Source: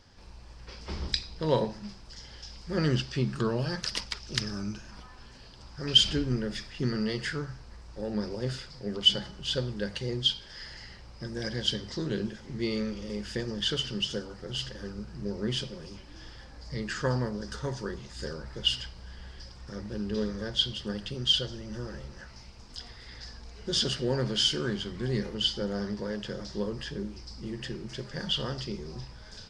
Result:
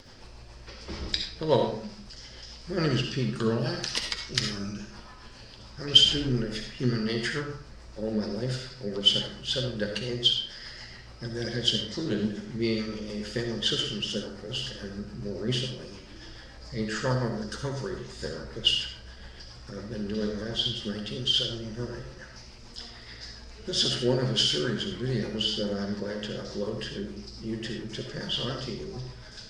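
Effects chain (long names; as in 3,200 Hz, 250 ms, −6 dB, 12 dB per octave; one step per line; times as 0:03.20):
low-shelf EQ 140 Hz −5.5 dB
upward compression, threshold −45 dBFS
rotating-speaker cabinet horn 7 Hz
flanger 0.45 Hz, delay 7.7 ms, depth 1.7 ms, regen +65%
on a send: convolution reverb RT60 0.45 s, pre-delay 25 ms, DRR 3.5 dB
on the sum: level +8 dB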